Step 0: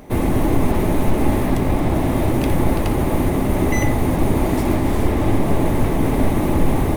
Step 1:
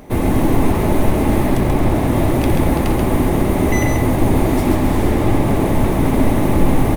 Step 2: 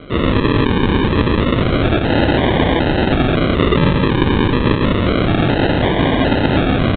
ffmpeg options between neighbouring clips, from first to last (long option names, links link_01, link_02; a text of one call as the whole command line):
ffmpeg -i in.wav -af "aecho=1:1:134:0.596,volume=1.5dB" out.wav
ffmpeg -i in.wav -af "highpass=56,equalizer=frequency=2400:width=0.37:gain=13.5,aresample=8000,acrusher=samples=9:mix=1:aa=0.000001:lfo=1:lforange=5.4:lforate=0.29,aresample=44100,volume=-1dB" out.wav